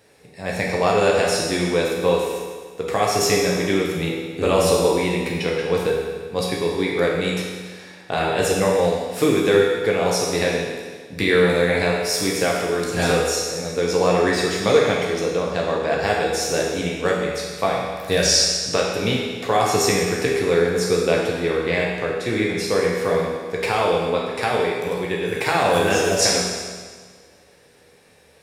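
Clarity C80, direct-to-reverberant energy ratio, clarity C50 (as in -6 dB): 2.5 dB, -3.5 dB, 0.5 dB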